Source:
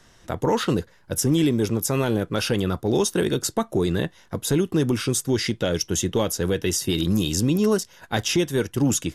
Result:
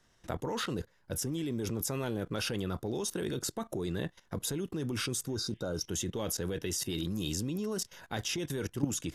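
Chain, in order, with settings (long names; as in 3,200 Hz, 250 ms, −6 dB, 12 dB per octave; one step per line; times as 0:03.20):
output level in coarse steps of 17 dB
healed spectral selection 0:05.32–0:05.81, 1,600–3,600 Hz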